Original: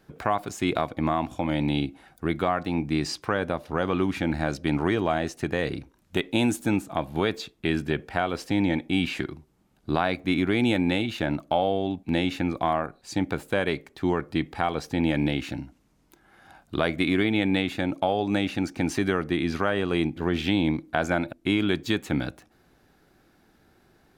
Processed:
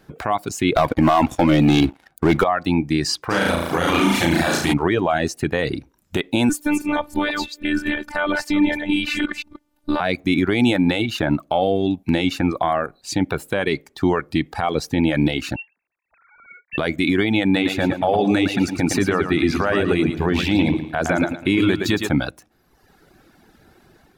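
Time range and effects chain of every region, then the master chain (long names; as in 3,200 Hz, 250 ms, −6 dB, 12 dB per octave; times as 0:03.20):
0:00.76–0:02.44: bass and treble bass −1 dB, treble −4 dB + leveller curve on the samples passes 3
0:03.29–0:04.72: spectral envelope flattened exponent 0.6 + flutter between parallel walls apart 6.1 metres, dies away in 1.3 s
0:06.49–0:10.00: delay that plays each chunk backwards 163 ms, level −4 dB + dynamic equaliser 1,600 Hz, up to +5 dB, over −43 dBFS, Q 1.2 + phases set to zero 296 Hz
0:15.56–0:16.78: three sine waves on the formant tracks + high-pass filter 730 Hz 6 dB per octave + voice inversion scrambler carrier 3,000 Hz
0:17.45–0:22.09: notch filter 3,200 Hz, Q 13 + repeating echo 112 ms, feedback 44%, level −5 dB
whole clip: reverb reduction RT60 0.99 s; automatic gain control gain up to 4 dB; brickwall limiter −14.5 dBFS; level +6.5 dB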